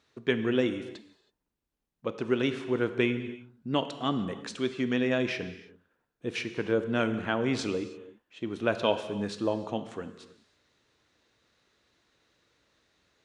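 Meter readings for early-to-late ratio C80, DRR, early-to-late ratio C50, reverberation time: 12.0 dB, 9.5 dB, 11.0 dB, non-exponential decay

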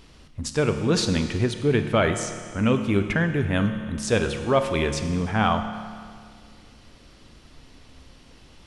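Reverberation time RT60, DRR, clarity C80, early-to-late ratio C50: 2.0 s, 7.0 dB, 9.0 dB, 8.0 dB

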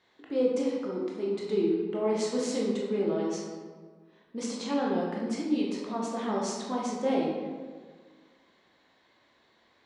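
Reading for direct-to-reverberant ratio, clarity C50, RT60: −3.5 dB, 0.5 dB, 1.6 s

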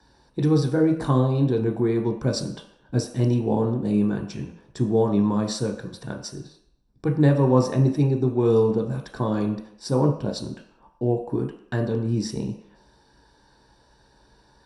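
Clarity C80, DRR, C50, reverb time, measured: 11.0 dB, 2.5 dB, 8.0 dB, non-exponential decay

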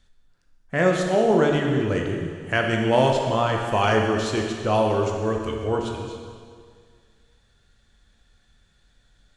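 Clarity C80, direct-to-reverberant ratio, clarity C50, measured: 4.5 dB, 1.0 dB, 3.0 dB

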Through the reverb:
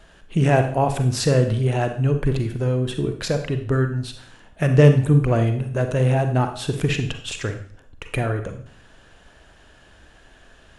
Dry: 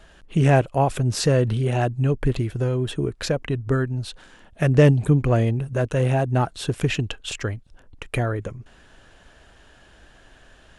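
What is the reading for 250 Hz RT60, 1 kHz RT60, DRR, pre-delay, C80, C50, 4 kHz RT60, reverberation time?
0.60 s, 0.55 s, 6.5 dB, 35 ms, 12.5 dB, 8.5 dB, 0.55 s, 0.55 s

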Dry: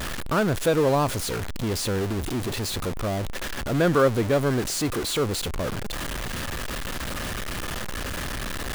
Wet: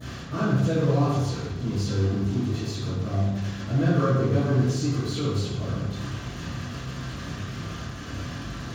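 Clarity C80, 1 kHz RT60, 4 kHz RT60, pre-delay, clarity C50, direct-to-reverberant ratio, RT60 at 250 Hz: 2.0 dB, 0.95 s, 0.75 s, 3 ms, −1.0 dB, −19.5 dB, 1.4 s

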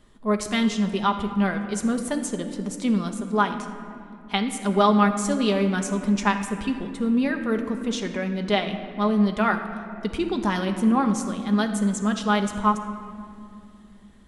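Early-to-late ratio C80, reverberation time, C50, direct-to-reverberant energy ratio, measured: 9.0 dB, 2.4 s, 8.0 dB, 4.5 dB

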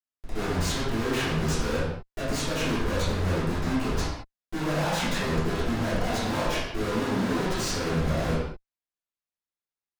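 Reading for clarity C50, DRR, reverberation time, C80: −1.0 dB, −12.0 dB, non-exponential decay, 3.0 dB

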